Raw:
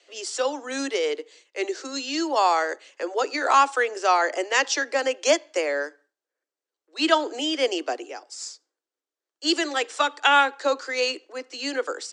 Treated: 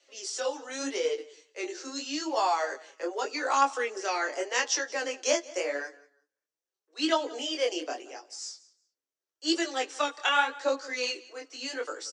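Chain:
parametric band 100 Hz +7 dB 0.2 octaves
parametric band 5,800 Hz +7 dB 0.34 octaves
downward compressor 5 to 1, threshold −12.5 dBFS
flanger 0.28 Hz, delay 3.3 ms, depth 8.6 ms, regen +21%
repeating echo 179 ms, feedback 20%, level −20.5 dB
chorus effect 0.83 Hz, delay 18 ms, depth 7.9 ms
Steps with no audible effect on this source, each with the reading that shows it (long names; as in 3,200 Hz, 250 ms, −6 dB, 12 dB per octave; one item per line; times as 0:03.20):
parametric band 100 Hz: nothing at its input below 230 Hz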